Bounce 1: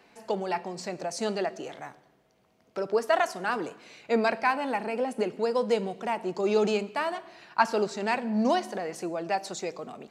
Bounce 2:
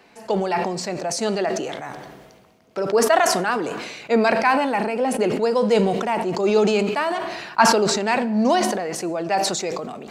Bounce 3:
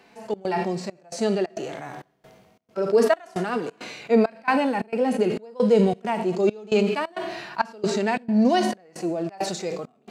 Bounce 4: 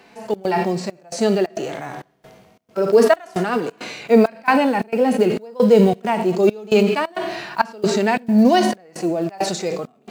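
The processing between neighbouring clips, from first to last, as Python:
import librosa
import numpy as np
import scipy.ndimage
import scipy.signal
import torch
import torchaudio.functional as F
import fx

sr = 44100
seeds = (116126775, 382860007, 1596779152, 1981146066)

y1 = fx.sustainer(x, sr, db_per_s=37.0)
y1 = y1 * librosa.db_to_amplitude(6.0)
y2 = fx.hpss(y1, sr, part='percussive', gain_db=-15)
y2 = fx.step_gate(y2, sr, bpm=134, pattern='xxx.xxxx..', floor_db=-24.0, edge_ms=4.5)
y2 = fx.dynamic_eq(y2, sr, hz=990.0, q=1.3, threshold_db=-37.0, ratio=4.0, max_db=-5)
y2 = y2 * librosa.db_to_amplitude(1.5)
y3 = fx.block_float(y2, sr, bits=7)
y3 = y3 * librosa.db_to_amplitude(5.5)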